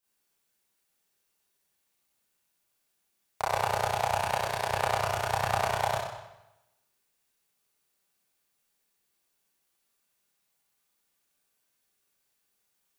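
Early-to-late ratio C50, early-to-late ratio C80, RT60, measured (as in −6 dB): −2.0 dB, 2.5 dB, 0.95 s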